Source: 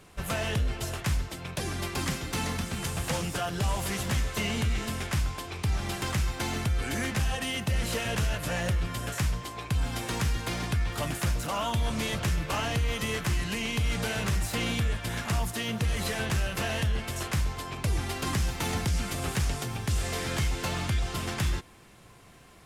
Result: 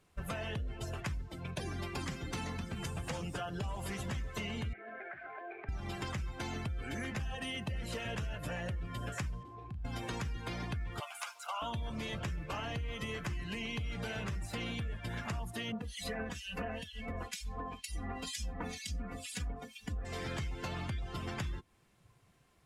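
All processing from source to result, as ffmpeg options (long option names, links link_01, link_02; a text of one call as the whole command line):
ffmpeg -i in.wav -filter_complex "[0:a]asettb=1/sr,asplit=3[link_01][link_02][link_03];[link_01]atrim=end=4.734[link_04];[link_02]atrim=start=4.73:end=5.69,asetpts=PTS-STARTPTS,afade=type=in:duration=0.004:curve=qsin,afade=type=out:start_time=0.956:duration=0.004:curve=qsin,highpass=360,equalizer=frequency=380:width_type=q:width=4:gain=5,equalizer=frequency=680:width_type=q:width=4:gain=9,equalizer=frequency=1000:width_type=q:width=4:gain=-5,equalizer=frequency=1600:width_type=q:width=4:gain=8,equalizer=frequency=2300:width_type=q:width=4:gain=4,lowpass=frequency=2400:width=0.5412,lowpass=frequency=2400:width=1.3066,acompressor=threshold=-37dB:ratio=20:attack=3.2:release=140:knee=1:detection=peak[link_05];[link_03]atrim=start=5.686[link_06];[link_04][link_05]acrossfade=duration=0.004:curve1=hsin:curve2=qsin[link_07];[link_07][link_06]acrossfade=duration=0.004:curve1=qsin:curve2=hsin,asettb=1/sr,asplit=3[link_08][link_09][link_10];[link_08]atrim=end=9.434[link_11];[link_09]atrim=start=9.43:end=9.85,asetpts=PTS-STARTPTS,afade=type=in:duration=0.004:curve=qsin,afade=type=out:start_time=0.416:duration=0.004:curve=qsin,lowpass=frequency=1400:poles=1,acompressor=threshold=-40dB:ratio=6:attack=3.2:release=140:knee=1:detection=peak,asplit=2[link_12][link_13];[link_13]adelay=37,volume=-9dB[link_14];[link_12][link_14]amix=inputs=2:normalize=0,atrim=end_sample=18522[link_15];[link_10]atrim=start=9.846[link_16];[link_11][link_15]acrossfade=duration=0.004:curve1=hsin:curve2=qsin[link_17];[link_17][link_16]acrossfade=duration=0.004:curve1=qsin:curve2=hsin,asettb=1/sr,asplit=3[link_18][link_19][link_20];[link_18]atrim=end=11.004[link_21];[link_19]atrim=start=11:end=11.62,asetpts=PTS-STARTPTS,afade=type=in:duration=0.004:curve=qsin,afade=type=out:start_time=0.616:duration=0.004:curve=qsin,highpass=frequency=750:width=0.5412,highpass=frequency=750:width=1.3066,bandreject=frequency=1800:width=6,aeval=exprs='sgn(val(0))*max(abs(val(0))-0.00119,0)':channel_layout=same[link_22];[link_20]atrim=start=11.616[link_23];[link_21][link_22]acrossfade=duration=0.004:curve1=hsin:curve2=qsin[link_24];[link_24][link_23]acrossfade=duration=0.004:curve1=qsin:curve2=hsin,asettb=1/sr,asplit=3[link_25][link_26][link_27];[link_25]atrim=end=15.724[link_28];[link_26]atrim=start=15.72:end=20.05,asetpts=PTS-STARTPTS,afade=type=in:duration=0.004:curve=qsin,afade=type=out:start_time=4.326:duration=0.004:curve=qsin,aecho=1:1:4.1:0.86,atrim=end_sample=190953,acrossover=split=2200[link_29][link_30];[link_29]aeval=exprs='val(0)*(1-1/2+1/2*cos(2*PI*2.1*n/s))':channel_layout=same[link_31];[link_30]aeval=exprs='val(0)*(1-1/2-1/2*cos(2*PI*2.1*n/s))':channel_layout=same[link_32];[link_31][link_32]amix=inputs=2:normalize=0[link_33];[link_27]atrim=start=20.046[link_34];[link_28][link_33]acrossfade=duration=0.004:curve1=hsin:curve2=qsin[link_35];[link_35][link_34]acrossfade=duration=0.004:curve1=qsin:curve2=hsin,afftdn=noise_reduction=15:noise_floor=-38,acompressor=threshold=-35dB:ratio=6,volume=-1dB" out.wav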